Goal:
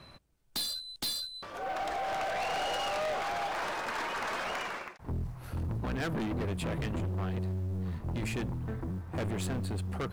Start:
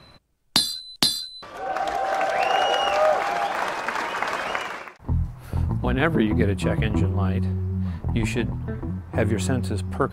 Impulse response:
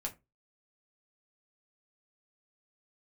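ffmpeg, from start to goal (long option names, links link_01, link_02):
-af "aeval=exprs='(tanh(22.4*val(0)+0.15)-tanh(0.15))/22.4':channel_layout=same,acrusher=bits=9:mode=log:mix=0:aa=0.000001,volume=-3.5dB"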